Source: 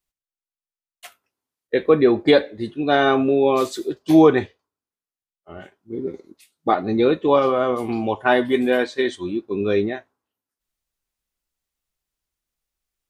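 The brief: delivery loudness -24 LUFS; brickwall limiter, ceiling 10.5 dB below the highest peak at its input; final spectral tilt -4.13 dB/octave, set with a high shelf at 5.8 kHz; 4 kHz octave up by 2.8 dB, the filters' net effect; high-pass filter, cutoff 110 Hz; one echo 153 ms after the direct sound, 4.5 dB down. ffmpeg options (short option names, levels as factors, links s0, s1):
-af "highpass=110,equalizer=f=4000:t=o:g=4.5,highshelf=f=5800:g=-4,alimiter=limit=0.237:level=0:latency=1,aecho=1:1:153:0.596,volume=0.841"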